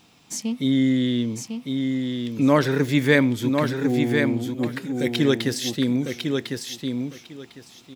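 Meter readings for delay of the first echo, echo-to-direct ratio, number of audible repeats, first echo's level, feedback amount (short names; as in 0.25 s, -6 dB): 1.052 s, -5.0 dB, 3, -5.0 dB, 18%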